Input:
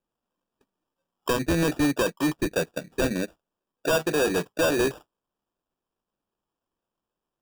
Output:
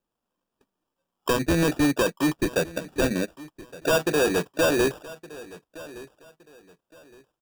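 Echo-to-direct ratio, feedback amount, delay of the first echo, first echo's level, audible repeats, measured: -18.5 dB, 27%, 1.166 s, -19.0 dB, 2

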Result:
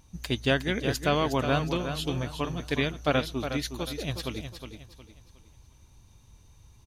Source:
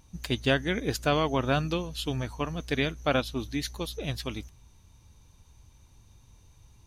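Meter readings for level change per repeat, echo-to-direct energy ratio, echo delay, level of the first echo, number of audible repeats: -9.5 dB, -8.0 dB, 0.363 s, -8.5 dB, 3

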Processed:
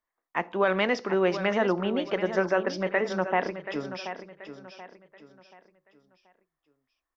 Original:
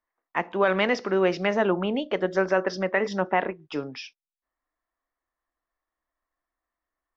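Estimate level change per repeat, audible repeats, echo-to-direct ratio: -9.0 dB, 3, -10.5 dB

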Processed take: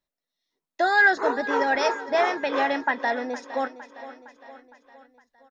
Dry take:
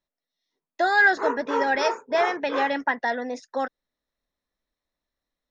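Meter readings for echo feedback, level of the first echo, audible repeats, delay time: 55%, -15.0 dB, 4, 0.461 s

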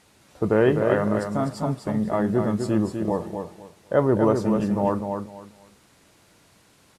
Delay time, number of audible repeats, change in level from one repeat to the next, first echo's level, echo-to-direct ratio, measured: 0.251 s, 3, -13.0 dB, -6.0 dB, -6.0 dB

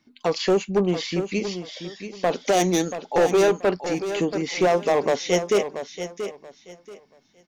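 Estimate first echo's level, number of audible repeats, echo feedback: -10.0 dB, 3, 24%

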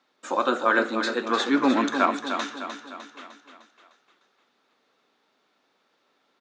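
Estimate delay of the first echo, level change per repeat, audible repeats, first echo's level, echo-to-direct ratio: 0.303 s, -6.0 dB, 5, -8.0 dB, -6.5 dB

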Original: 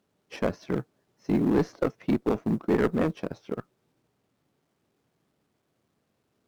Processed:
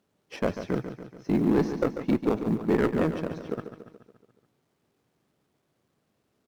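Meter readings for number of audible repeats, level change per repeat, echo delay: 5, -5.0 dB, 0.142 s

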